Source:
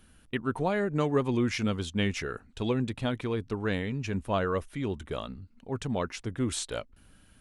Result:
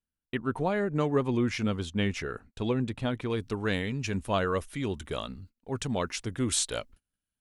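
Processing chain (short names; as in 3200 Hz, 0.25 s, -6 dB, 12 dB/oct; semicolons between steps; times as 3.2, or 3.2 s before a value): high shelf 2900 Hz -3 dB, from 3.3 s +8 dB; gate -49 dBFS, range -34 dB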